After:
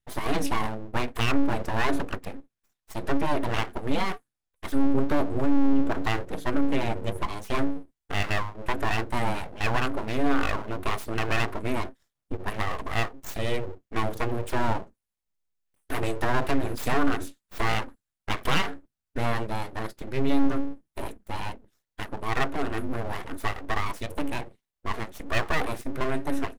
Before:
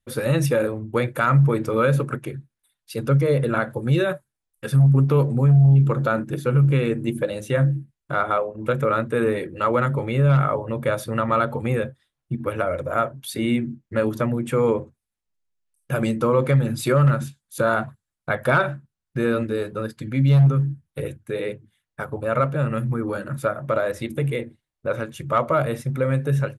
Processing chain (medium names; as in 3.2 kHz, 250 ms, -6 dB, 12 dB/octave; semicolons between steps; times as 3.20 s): treble shelf 10 kHz -5 dB, from 7.44 s +3.5 dB; full-wave rectifier; trim -2.5 dB